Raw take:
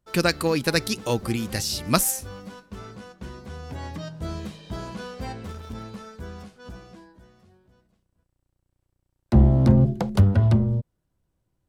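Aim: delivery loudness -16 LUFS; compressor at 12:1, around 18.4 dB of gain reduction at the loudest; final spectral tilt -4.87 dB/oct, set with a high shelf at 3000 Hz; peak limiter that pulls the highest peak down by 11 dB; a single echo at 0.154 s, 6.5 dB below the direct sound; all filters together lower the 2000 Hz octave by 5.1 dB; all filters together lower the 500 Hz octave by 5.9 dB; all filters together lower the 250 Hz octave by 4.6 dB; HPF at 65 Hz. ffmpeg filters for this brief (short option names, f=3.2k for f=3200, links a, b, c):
-af "highpass=65,equalizer=f=250:t=o:g=-5,equalizer=f=500:t=o:g=-5.5,equalizer=f=2k:t=o:g=-8,highshelf=f=3k:g=3.5,acompressor=threshold=-32dB:ratio=12,alimiter=level_in=4.5dB:limit=-24dB:level=0:latency=1,volume=-4.5dB,aecho=1:1:154:0.473,volume=23dB"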